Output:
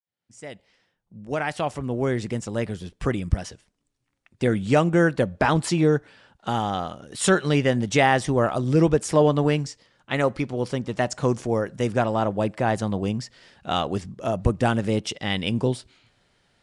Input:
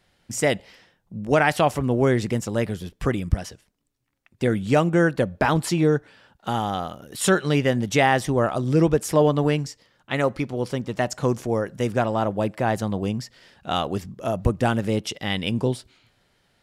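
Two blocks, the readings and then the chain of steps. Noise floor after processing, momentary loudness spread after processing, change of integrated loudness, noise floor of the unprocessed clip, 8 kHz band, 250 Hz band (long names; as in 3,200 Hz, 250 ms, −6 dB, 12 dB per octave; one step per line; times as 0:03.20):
−77 dBFS, 10 LU, −0.5 dB, −68 dBFS, −1.0 dB, −0.5 dB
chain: fade in at the beginning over 3.58 s
Ogg Vorbis 64 kbit/s 22,050 Hz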